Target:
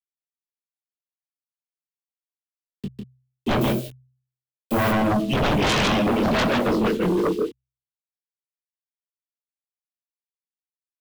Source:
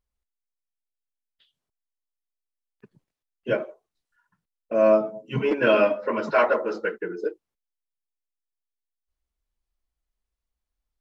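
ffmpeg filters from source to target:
ffmpeg -i in.wav -filter_complex "[0:a]acrusher=bits=7:mix=0:aa=0.000001,firequalizer=gain_entry='entry(210,0);entry(530,-19);entry(1400,-25);entry(3100,-7);entry(5700,-17)':delay=0.05:min_phase=1,aecho=1:1:151:0.596,acrossover=split=230|3000[link_01][link_02][link_03];[link_02]acompressor=threshold=-33dB:ratio=6[link_04];[link_01][link_04][link_03]amix=inputs=3:normalize=0,asettb=1/sr,asplit=3[link_05][link_06][link_07];[link_05]atrim=end=3.614[link_08];[link_06]atrim=start=3.61:end=4.91,asetpts=PTS-STARTPTS,afade=type=in:duration=0.004:curve=qsin,afade=type=out:start_time=1.296:duration=0.004:curve=qsin,aemphasis=mode=production:type=50fm[link_09];[link_07]atrim=start=4.906[link_10];[link_08][link_09]acrossfade=duration=0.004:curve1=hsin:curve2=qsin[link_11];[link_11][link_10]acrossfade=duration=0.004:curve1=qsin:curve2=hsin,acrossover=split=1700[link_12][link_13];[link_12]asoftclip=type=hard:threshold=-28.5dB[link_14];[link_14][link_13]amix=inputs=2:normalize=0,flanger=delay=19.5:depth=5.3:speed=1.8,bandreject=frequency=64.06:width_type=h:width=4,bandreject=frequency=128.12:width_type=h:width=4,aeval=exprs='0.0794*sin(PI/2*7.08*val(0)/0.0794)':channel_layout=same,volume=5dB" out.wav

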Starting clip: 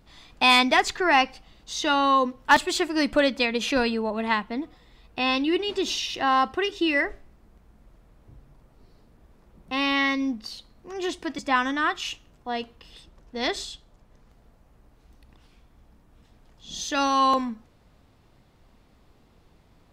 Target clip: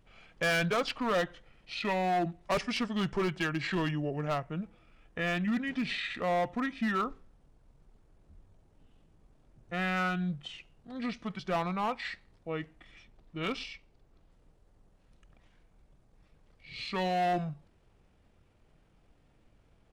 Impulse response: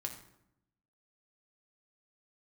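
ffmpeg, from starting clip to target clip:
-af "asetrate=29433,aresample=44100,atempo=1.49831,volume=19dB,asoftclip=hard,volume=-19dB,volume=-6dB"

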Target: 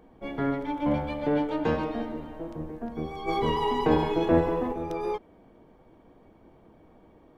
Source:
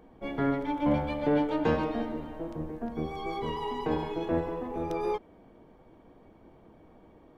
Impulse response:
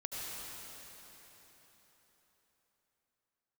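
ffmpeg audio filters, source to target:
-filter_complex "[0:a]asplit=3[link_01][link_02][link_03];[link_01]afade=type=out:start_time=3.27:duration=0.02[link_04];[link_02]acontrast=89,afade=type=in:start_time=3.27:duration=0.02,afade=type=out:start_time=4.72:duration=0.02[link_05];[link_03]afade=type=in:start_time=4.72:duration=0.02[link_06];[link_04][link_05][link_06]amix=inputs=3:normalize=0"

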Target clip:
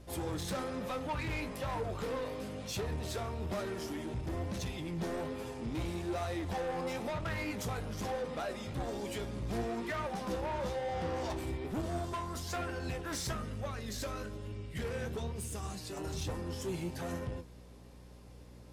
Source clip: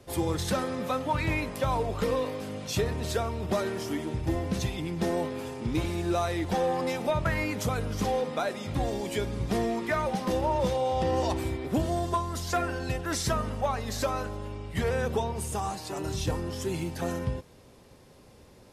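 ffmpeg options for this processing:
ffmpeg -i in.wav -filter_complex "[0:a]asettb=1/sr,asplit=3[link_01][link_02][link_03];[link_01]atrim=end=13.314[link_04];[link_02]atrim=start=13.31:end=15.97,asetpts=PTS-STARTPTS,afade=type=in:duration=0.004:curve=qsin,afade=type=out:start_time=2.656:duration=0.004:curve=qsin,equalizer=frequency=850:width_type=o:width=0.8:gain=-12.5[link_05];[link_03]atrim=start=15.966[link_06];[link_04][link_05]acrossfade=duration=0.004:curve1=hsin:curve2=qsin[link_07];[link_07][link_06]acrossfade=duration=0.004:curve1=qsin:curve2=hsin,asoftclip=type=tanh:threshold=-28.5dB,flanger=delay=8.7:depth=9.5:regen=56:speed=1.1:shape=triangular,aeval=exprs='val(0)+0.00224*(sin(2*PI*60*n/s)+sin(2*PI*2*60*n/s)/2+sin(2*PI*3*60*n/s)/3+sin(2*PI*4*60*n/s)/4+sin(2*PI*5*60*n/s)/5)':channel_layout=same" out.wav

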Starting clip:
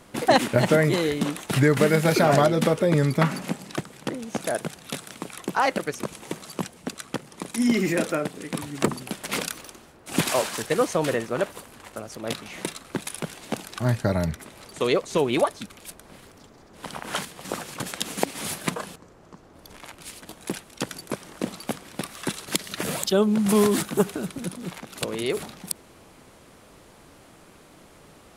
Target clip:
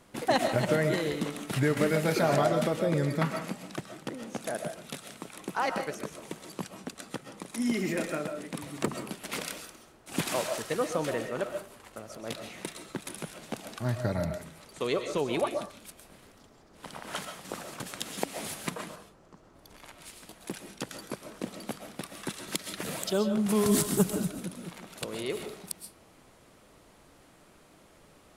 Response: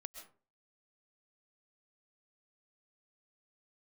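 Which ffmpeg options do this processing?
-filter_complex "[0:a]asettb=1/sr,asplit=3[link_01][link_02][link_03];[link_01]atrim=end=23.664[link_04];[link_02]atrim=start=23.66:end=24.3,asetpts=PTS-STARTPTS,afade=type=in:duration=0.004:curve=qsin,afade=type=out:start_time=0.636:duration=0.004:curve=qsin,bass=frequency=250:gain=10,treble=frequency=4000:gain=10[link_05];[link_03]atrim=start=24.296[link_06];[link_04][link_05]acrossfade=duration=0.004:curve1=hsin:curve2=qsin[link_07];[link_07][link_06]acrossfade=duration=0.004:curve1=qsin:curve2=hsin[link_08];[1:a]atrim=start_sample=2205[link_09];[link_08][link_09]afir=irnorm=-1:irlink=0,volume=-2dB"

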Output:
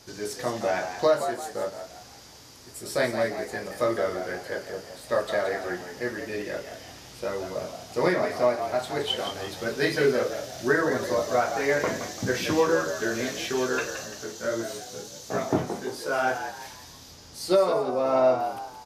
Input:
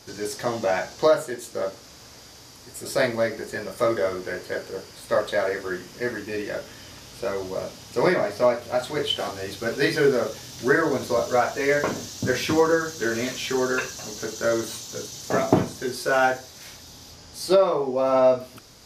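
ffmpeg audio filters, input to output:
ffmpeg -i in.wav -filter_complex "[0:a]asplit=3[link_01][link_02][link_03];[link_01]afade=type=out:start_time=14.04:duration=0.02[link_04];[link_02]flanger=delay=17:depth=6.7:speed=1.5,afade=type=in:start_time=14.04:duration=0.02,afade=type=out:start_time=16.26:duration=0.02[link_05];[link_03]afade=type=in:start_time=16.26:duration=0.02[link_06];[link_04][link_05][link_06]amix=inputs=3:normalize=0,asplit=5[link_07][link_08][link_09][link_10][link_11];[link_08]adelay=171,afreqshift=76,volume=-9dB[link_12];[link_09]adelay=342,afreqshift=152,volume=-17.4dB[link_13];[link_10]adelay=513,afreqshift=228,volume=-25.8dB[link_14];[link_11]adelay=684,afreqshift=304,volume=-34.2dB[link_15];[link_07][link_12][link_13][link_14][link_15]amix=inputs=5:normalize=0,volume=-3dB" out.wav

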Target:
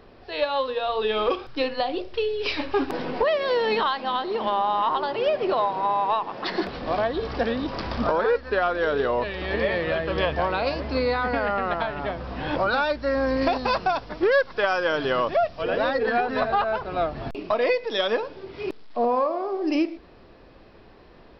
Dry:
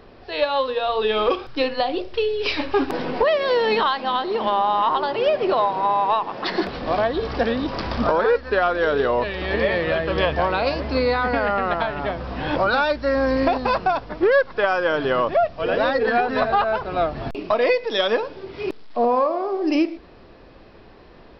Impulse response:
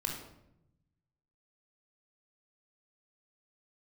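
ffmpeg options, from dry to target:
-filter_complex "[0:a]asettb=1/sr,asplit=3[link_01][link_02][link_03];[link_01]atrim=end=13.414[link_04];[link_02]atrim=start=13.41:end=15.63,asetpts=PTS-STARTPTS,afade=type=in:duration=0.004:curve=qsin,afade=type=out:start_time=2.216:duration=0.004:curve=qsin,highshelf=frequency=4300:gain=11.5[link_05];[link_03]atrim=start=15.626[link_06];[link_04][link_05]acrossfade=duration=0.004:curve1=hsin:curve2=qsin[link_07];[link_07][link_06]acrossfade=duration=0.004:curve1=qsin:curve2=hsin,volume=-3.5dB"

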